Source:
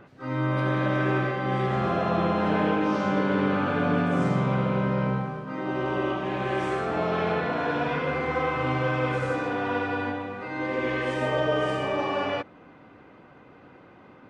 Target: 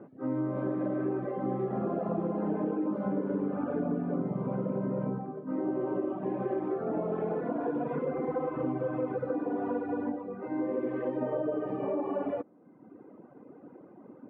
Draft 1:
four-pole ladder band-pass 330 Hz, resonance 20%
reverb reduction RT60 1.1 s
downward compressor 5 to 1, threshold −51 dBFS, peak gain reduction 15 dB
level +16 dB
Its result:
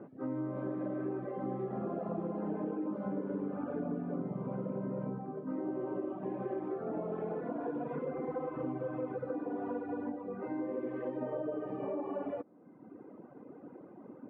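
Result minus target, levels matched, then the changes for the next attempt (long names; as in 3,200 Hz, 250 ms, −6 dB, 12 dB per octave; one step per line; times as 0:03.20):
downward compressor: peak gain reduction +5.5 dB
change: downward compressor 5 to 1, threshold −44 dBFS, peak gain reduction 9.5 dB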